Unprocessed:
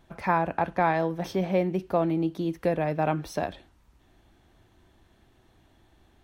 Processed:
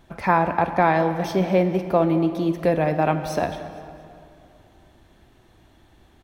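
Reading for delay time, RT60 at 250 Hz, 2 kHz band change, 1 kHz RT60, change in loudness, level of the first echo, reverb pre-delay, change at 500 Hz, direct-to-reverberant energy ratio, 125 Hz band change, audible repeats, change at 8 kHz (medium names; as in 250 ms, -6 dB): 227 ms, 2.6 s, +6.0 dB, 2.7 s, +6.0 dB, -18.0 dB, 35 ms, +6.0 dB, 9.0 dB, +5.5 dB, 3, +6.0 dB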